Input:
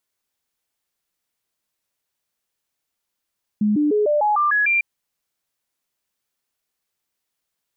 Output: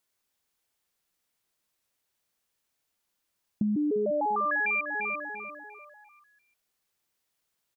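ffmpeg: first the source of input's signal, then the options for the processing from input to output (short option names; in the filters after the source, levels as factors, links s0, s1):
-f lavfi -i "aevalsrc='0.178*clip(min(mod(t,0.15),0.15-mod(t,0.15))/0.005,0,1)*sin(2*PI*210*pow(2,floor(t/0.15)/2)*mod(t,0.15))':d=1.2:s=44100"
-filter_complex "[0:a]asplit=2[s0][s1];[s1]adelay=346,lowpass=f=2100:p=1,volume=0.316,asplit=2[s2][s3];[s3]adelay=346,lowpass=f=2100:p=1,volume=0.47,asplit=2[s4][s5];[s5]adelay=346,lowpass=f=2100:p=1,volume=0.47,asplit=2[s6][s7];[s7]adelay=346,lowpass=f=2100:p=1,volume=0.47,asplit=2[s8][s9];[s9]adelay=346,lowpass=f=2100:p=1,volume=0.47[s10];[s0][s2][s4][s6][s8][s10]amix=inputs=6:normalize=0,acompressor=threshold=0.0501:ratio=6"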